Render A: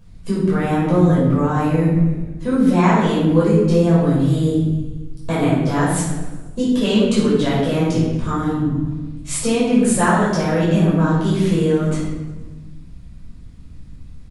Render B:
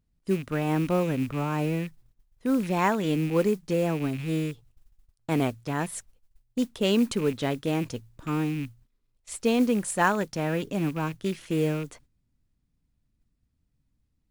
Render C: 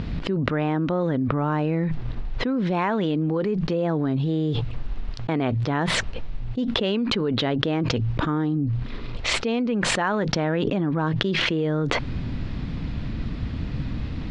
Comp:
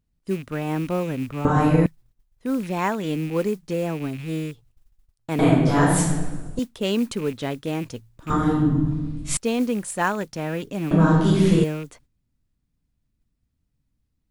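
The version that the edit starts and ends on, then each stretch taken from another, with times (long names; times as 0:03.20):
B
0:01.45–0:01.86: punch in from A
0:05.39–0:06.59: punch in from A
0:08.30–0:09.37: punch in from A
0:10.91–0:11.64: punch in from A
not used: C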